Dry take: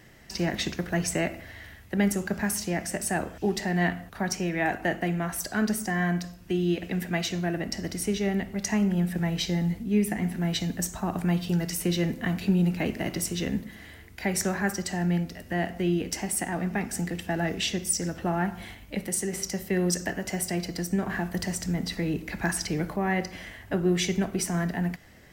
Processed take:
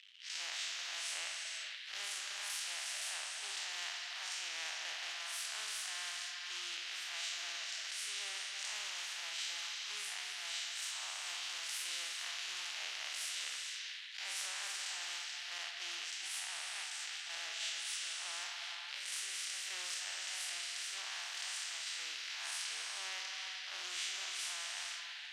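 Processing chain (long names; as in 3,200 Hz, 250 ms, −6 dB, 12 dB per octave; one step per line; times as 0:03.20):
spectrum smeared in time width 111 ms
0:15.58–0:18.11: downward expander −30 dBFS
high-shelf EQ 4,500 Hz +10.5 dB
floating-point word with a short mantissa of 2 bits
dead-zone distortion −47 dBFS
four-pole ladder high-pass 2,800 Hz, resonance 70%
head-to-tape spacing loss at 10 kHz 37 dB
reverb whose tail is shaped and stops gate 500 ms flat, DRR 7.5 dB
every bin compressed towards the loudest bin 4 to 1
level +11.5 dB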